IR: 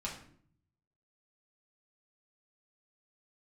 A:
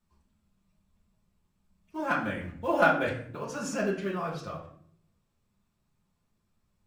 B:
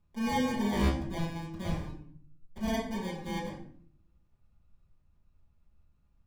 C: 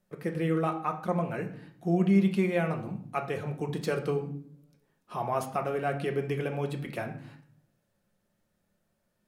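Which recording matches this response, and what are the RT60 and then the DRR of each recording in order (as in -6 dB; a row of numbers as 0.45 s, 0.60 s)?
A; 0.55 s, 0.55 s, 0.60 s; -5.0 dB, -9.0 dB, 3.0 dB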